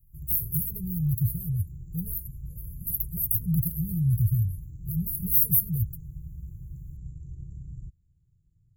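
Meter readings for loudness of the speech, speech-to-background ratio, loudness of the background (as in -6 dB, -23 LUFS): -26.5 LUFS, 15.5 dB, -42.0 LUFS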